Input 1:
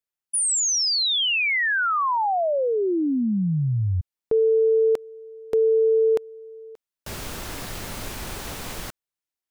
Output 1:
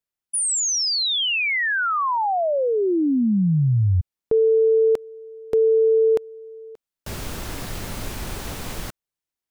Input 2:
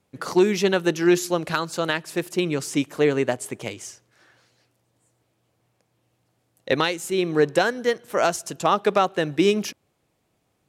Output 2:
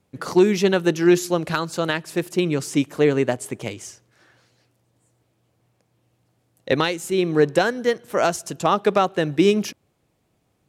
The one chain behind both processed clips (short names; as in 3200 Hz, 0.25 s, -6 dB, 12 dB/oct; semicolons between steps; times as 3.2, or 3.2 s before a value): low shelf 340 Hz +5 dB